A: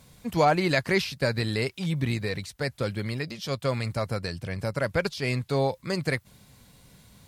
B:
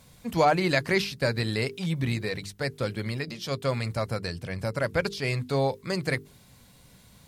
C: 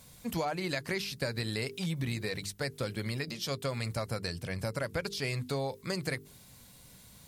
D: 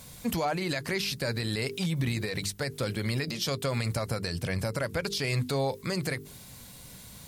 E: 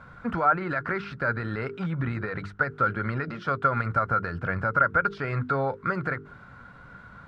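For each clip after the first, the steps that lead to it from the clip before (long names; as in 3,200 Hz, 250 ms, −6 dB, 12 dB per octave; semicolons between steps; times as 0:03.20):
mains-hum notches 50/100/150/200/250/300/350/400/450 Hz
high-shelf EQ 5,400 Hz +8 dB; downward compressor 10 to 1, threshold −27 dBFS, peak gain reduction 11 dB; level −2.5 dB
brickwall limiter −28 dBFS, peak gain reduction 8 dB; level +7.5 dB
low-pass with resonance 1,400 Hz, resonance Q 12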